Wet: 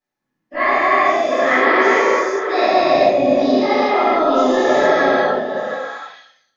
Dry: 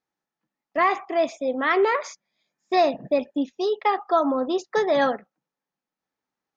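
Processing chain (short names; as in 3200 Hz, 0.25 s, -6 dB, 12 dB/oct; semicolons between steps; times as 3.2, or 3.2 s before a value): spectral dilation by 0.48 s; on a send: delay with a stepping band-pass 0.239 s, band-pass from 180 Hz, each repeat 1.4 oct, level -1.5 dB; on the sum: shoebox room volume 59 m³, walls mixed, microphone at 2.4 m; gain -13 dB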